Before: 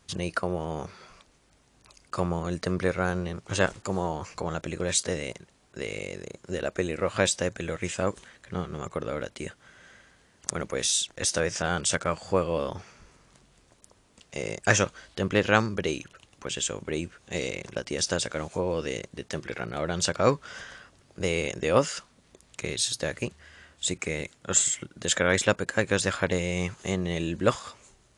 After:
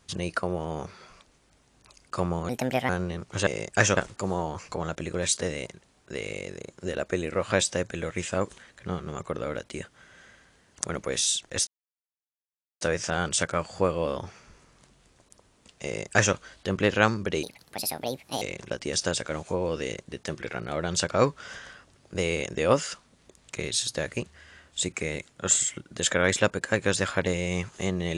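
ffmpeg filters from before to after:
-filter_complex "[0:a]asplit=8[a][b][c][d][e][f][g][h];[a]atrim=end=2.494[i];[b]atrim=start=2.49:end=3.05,asetpts=PTS-STARTPTS,asetrate=61740,aresample=44100[j];[c]atrim=start=3.046:end=3.632[k];[d]atrim=start=14.368:end=14.872[l];[e]atrim=start=3.628:end=11.33,asetpts=PTS-STARTPTS,afade=t=out:st=7.698:d=0.004:c=hsin,apad=pad_dur=1.14[m];[f]atrim=start=11.33:end=15.954,asetpts=PTS-STARTPTS,afade=t=in:d=0.004:c=hsin[n];[g]atrim=start=15.95:end=17.47,asetpts=PTS-STARTPTS,asetrate=67914,aresample=44100,atrim=end_sample=43527,asetpts=PTS-STARTPTS[o];[h]atrim=start=17.466[p];[i][j]acrossfade=d=0.004:c1=hsin:c2=hsin[q];[q][k]acrossfade=d=0.004:c1=hsin:c2=hsin[r];[r][l]acrossfade=d=0.004:c1=hsin:c2=hsin[s];[m][n]concat=n=2:v=0:a=1[t];[s][t]acrossfade=d=0.004:c1=hsin:c2=hsin[u];[u][o]acrossfade=d=0.004:c1=hsin:c2=hsin[v];[v][p]acrossfade=d=0.004:c1=hsin:c2=hsin"

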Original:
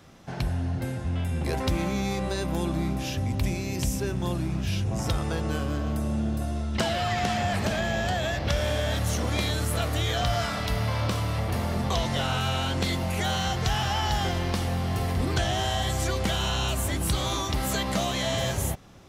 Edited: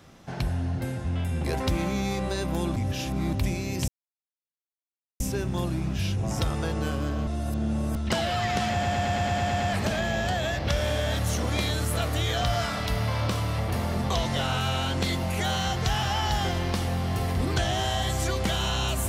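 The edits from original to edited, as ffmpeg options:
-filter_complex "[0:a]asplit=14[a][b][c][d][e][f][g][h][i][j][k][l][m][n];[a]atrim=end=2.762[o];[b]atrim=start=2.758:end=3.332,asetpts=PTS-STARTPTS,areverse[p];[c]atrim=start=3.328:end=3.88,asetpts=PTS-STARTPTS,afade=t=out:st=0.548:d=0.004:c=hsin,apad=pad_dur=1.32[q];[d]atrim=start=3.88:end=5.952,asetpts=PTS-STARTPTS,afade=t=in:d=0.004:c=hsin[r];[e]atrim=start=5.948:end=6.642,asetpts=PTS-STARTPTS,areverse[s];[f]atrim=start=6.638:end=7.512[t];[g]atrim=start=7.398:end=7.512[u];[h]atrim=start=7.398:end=7.512[v];[i]atrim=start=7.398:end=7.512[w];[j]atrim=start=7.398:end=7.512[x];[k]atrim=start=7.398:end=7.512[y];[l]atrim=start=7.398:end=7.512[z];[m]atrim=start=7.398:end=7.512[aa];[n]atrim=start=7.398[ab];[o][p]acrossfade=d=0.004:c1=hsin:c2=hsin[ac];[q][r]concat=n=2:v=0:a=1[ad];[ac][ad]acrossfade=d=0.004:c1=hsin:c2=hsin[ae];[ae][s]acrossfade=d=0.004:c1=hsin:c2=hsin[af];[af][t]acrossfade=d=0.004:c1=hsin:c2=hsin[ag];[ag][u]acrossfade=d=0.004:c1=hsin:c2=hsin[ah];[ah][v]acrossfade=d=0.004:c1=hsin:c2=hsin[ai];[ai][w]acrossfade=d=0.004:c1=hsin:c2=hsin[aj];[aj][x]acrossfade=d=0.004:c1=hsin:c2=hsin[ak];[ak][y]acrossfade=d=0.004:c1=hsin:c2=hsin[al];[al][z]acrossfade=d=0.004:c1=hsin:c2=hsin[am];[am][aa]acrossfade=d=0.004:c1=hsin:c2=hsin[an];[an][ab]acrossfade=d=0.004:c1=hsin:c2=hsin"

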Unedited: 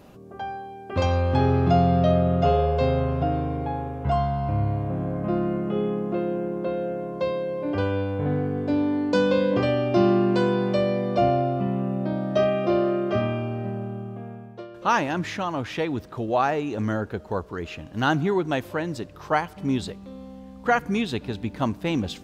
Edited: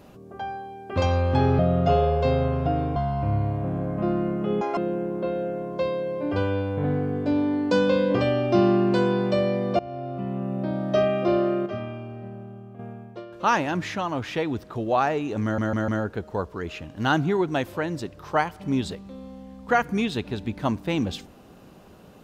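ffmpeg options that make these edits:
-filter_complex "[0:a]asplit=11[a][b][c][d][e][f][g][h][i][j][k];[a]atrim=end=1.592[l];[b]atrim=start=2.148:end=3.522[m];[c]atrim=start=4.218:end=5.874[n];[d]atrim=start=5.87:end=6.19,asetpts=PTS-STARTPTS,asetrate=87318,aresample=44100,atrim=end_sample=7127,asetpts=PTS-STARTPTS[o];[e]atrim=start=6.186:end=11.21,asetpts=PTS-STARTPTS,afade=t=out:st=5.02:d=0.004:c=hsin:silence=0.0749894[p];[f]atrim=start=11.21:end=13.082,asetpts=PTS-STARTPTS,afade=t=in:d=1.26:c=qsin:silence=0.0749894[q];[g]atrim=start=13.078:end=14.212,asetpts=PTS-STARTPTS,volume=-8dB[r];[h]atrim=start=14.208:end=17.002[s];[i]atrim=start=16.848:end=17.002[t];[j]atrim=start=16.848:end=17.002[u];[k]atrim=start=16.848[v];[l][m]acrossfade=d=0.004:c1=hsin:c2=hsin[w];[w][n]acrossfade=d=0.004:c1=hsin:c2=hsin[x];[x][o]acrossfade=d=0.004:c1=hsin:c2=hsin[y];[p][q]concat=n=2:v=0:a=1[z];[y][z]acrossfade=d=0.004:c1=hsin:c2=hsin[aa];[aa][r]acrossfade=d=0.004:c1=hsin:c2=hsin[ab];[ab][s]acrossfade=d=0.004:c1=hsin:c2=hsin[ac];[ac][t]acrossfade=d=0.004:c1=hsin:c2=hsin[ad];[ad][u]acrossfade=d=0.004:c1=hsin:c2=hsin[ae];[ae][v]acrossfade=d=0.004:c1=hsin:c2=hsin"

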